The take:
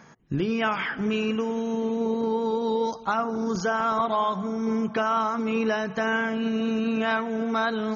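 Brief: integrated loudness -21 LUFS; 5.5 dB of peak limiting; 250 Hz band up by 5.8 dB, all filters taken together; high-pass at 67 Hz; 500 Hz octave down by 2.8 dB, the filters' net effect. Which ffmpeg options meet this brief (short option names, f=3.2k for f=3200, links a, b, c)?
-af "highpass=67,equalizer=f=250:t=o:g=7.5,equalizer=f=500:t=o:g=-5.5,volume=4.5dB,alimiter=limit=-14dB:level=0:latency=1"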